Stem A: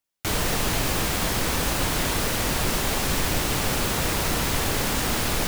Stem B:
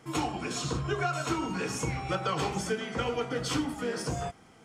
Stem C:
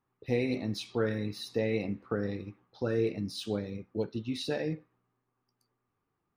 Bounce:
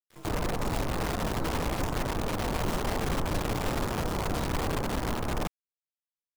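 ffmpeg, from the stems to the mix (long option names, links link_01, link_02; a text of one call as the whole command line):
ffmpeg -i stem1.wav -i stem2.wav -i stem3.wav -filter_complex "[0:a]lowpass=frequency=1200:width=0.5412,lowpass=frequency=1200:width=1.3066,volume=-4dB[link_01];[1:a]asoftclip=type=tanh:threshold=-25dB,adelay=100,volume=-1.5dB[link_02];[2:a]highpass=41,volume=-1dB[link_03];[link_02][link_03]amix=inputs=2:normalize=0,acrossover=split=100|810[link_04][link_05][link_06];[link_04]acompressor=threshold=-54dB:ratio=4[link_07];[link_05]acompressor=threshold=-38dB:ratio=4[link_08];[link_06]acompressor=threshold=-49dB:ratio=4[link_09];[link_07][link_08][link_09]amix=inputs=3:normalize=0,alimiter=level_in=12dB:limit=-24dB:level=0:latency=1:release=106,volume=-12dB,volume=0dB[link_10];[link_01][link_10]amix=inputs=2:normalize=0,acrusher=bits=6:dc=4:mix=0:aa=0.000001" out.wav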